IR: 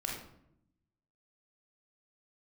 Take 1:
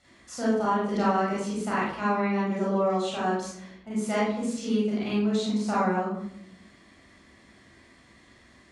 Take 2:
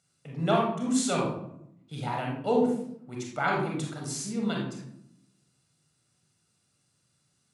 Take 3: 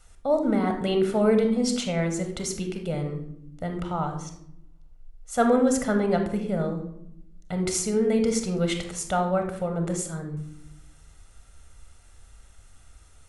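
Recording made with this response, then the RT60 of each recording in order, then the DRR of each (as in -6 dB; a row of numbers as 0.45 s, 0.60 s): 2; 0.75 s, 0.75 s, 0.75 s; -8.0 dB, -1.5 dB, 5.0 dB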